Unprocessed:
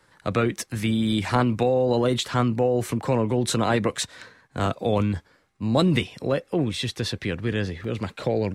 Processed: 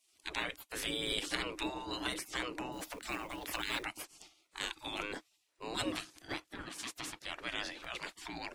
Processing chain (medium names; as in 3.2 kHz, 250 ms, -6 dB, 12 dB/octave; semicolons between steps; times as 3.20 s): spectral gate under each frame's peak -20 dB weak; 5.92–7.26 s: ring modulator 700 Hz; peaking EQ 310 Hz +12.5 dB 0.26 oct; 2.72–3.83 s: short-mantissa float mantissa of 2-bit